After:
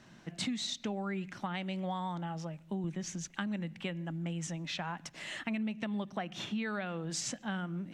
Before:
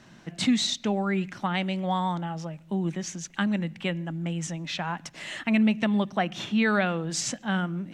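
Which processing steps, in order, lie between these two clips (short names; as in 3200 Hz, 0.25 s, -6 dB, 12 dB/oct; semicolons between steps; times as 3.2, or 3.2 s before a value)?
2.84–3.28 low shelf 140 Hz +8.5 dB; compressor 5:1, threshold -28 dBFS, peak gain reduction 9.5 dB; gain -5 dB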